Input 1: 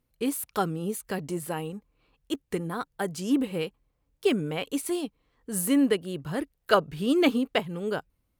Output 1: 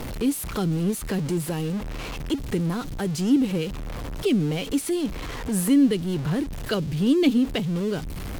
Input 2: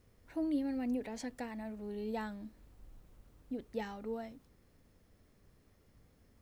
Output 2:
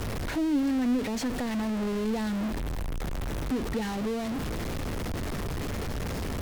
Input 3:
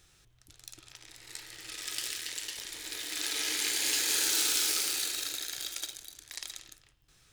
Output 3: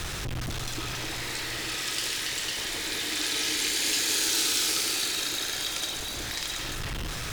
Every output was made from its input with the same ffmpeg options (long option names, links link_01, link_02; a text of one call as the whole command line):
ffmpeg -i in.wav -filter_complex "[0:a]aeval=exprs='val(0)+0.5*0.0266*sgn(val(0))':channel_layout=same,aemphasis=mode=reproduction:type=cd,acrossover=split=330|3000[link_01][link_02][link_03];[link_02]acompressor=threshold=-40dB:ratio=6[link_04];[link_01][link_04][link_03]amix=inputs=3:normalize=0,volume=6dB" out.wav